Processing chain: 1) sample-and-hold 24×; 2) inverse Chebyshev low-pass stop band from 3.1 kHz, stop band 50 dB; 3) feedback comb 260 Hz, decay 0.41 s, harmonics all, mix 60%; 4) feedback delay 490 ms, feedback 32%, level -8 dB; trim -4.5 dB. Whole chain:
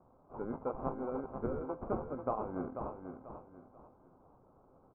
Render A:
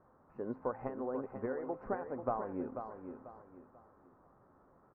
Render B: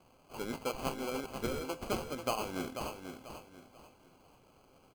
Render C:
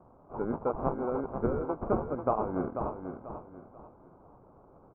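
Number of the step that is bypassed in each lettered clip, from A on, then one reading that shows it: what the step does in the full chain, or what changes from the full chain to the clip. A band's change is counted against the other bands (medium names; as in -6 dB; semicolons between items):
1, 2 kHz band +5.5 dB; 2, 2 kHz band +13.5 dB; 3, loudness change +7.0 LU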